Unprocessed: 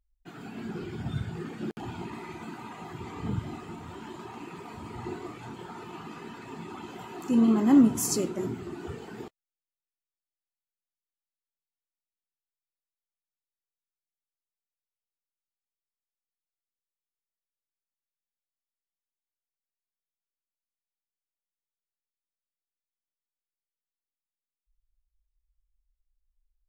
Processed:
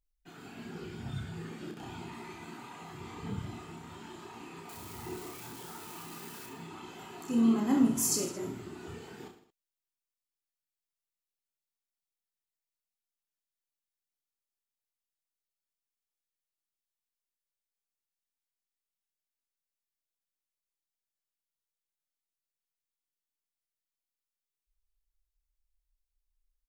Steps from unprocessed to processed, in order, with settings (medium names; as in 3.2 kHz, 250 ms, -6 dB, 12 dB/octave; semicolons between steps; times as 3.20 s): 4.69–6.46 s: zero-crossing glitches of -37.5 dBFS; treble shelf 2.3 kHz +7 dB; on a send: reverse bouncing-ball echo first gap 30 ms, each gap 1.2×, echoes 5; on the sum: trim -8 dB